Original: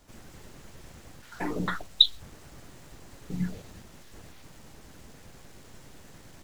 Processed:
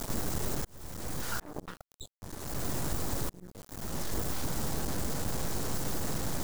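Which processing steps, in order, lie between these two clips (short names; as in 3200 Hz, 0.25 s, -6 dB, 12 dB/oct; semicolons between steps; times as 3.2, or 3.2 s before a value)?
in parallel at +1 dB: upward compressor, threshold -35 dBFS; on the sum: bit-crush 7-bit; auto swell 0.705 s; half-wave rectifier; bell 2600 Hz -9.5 dB 1.5 oct; gain +7.5 dB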